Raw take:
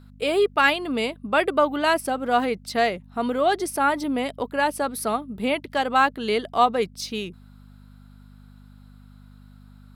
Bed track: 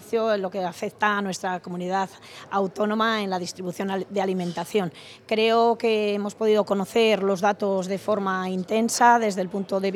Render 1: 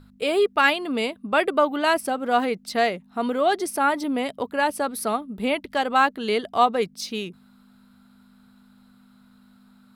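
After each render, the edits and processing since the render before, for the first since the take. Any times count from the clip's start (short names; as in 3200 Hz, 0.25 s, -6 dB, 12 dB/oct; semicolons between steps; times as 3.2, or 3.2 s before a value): de-hum 50 Hz, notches 3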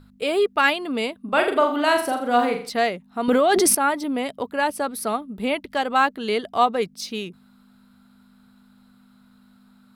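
1.22–2.7 flutter echo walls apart 7.1 m, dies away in 0.44 s; 3.28–3.75 fast leveller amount 100%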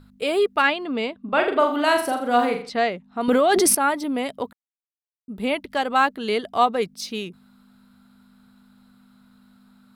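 0.62–1.59 air absorption 110 m; 2.62–3.21 air absorption 80 m; 4.53–5.28 mute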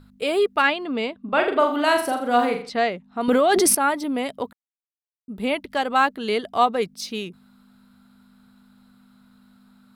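nothing audible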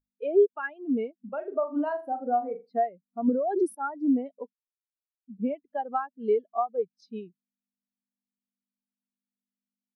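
compressor 16:1, threshold -22 dBFS, peak gain reduction 11 dB; spectral expander 2.5:1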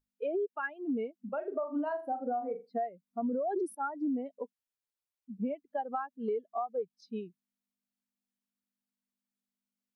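limiter -21 dBFS, peak gain reduction 9 dB; compressor 2.5:1, threshold -32 dBFS, peak gain reduction 6 dB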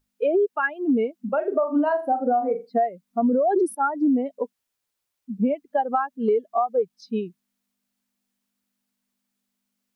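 gain +12 dB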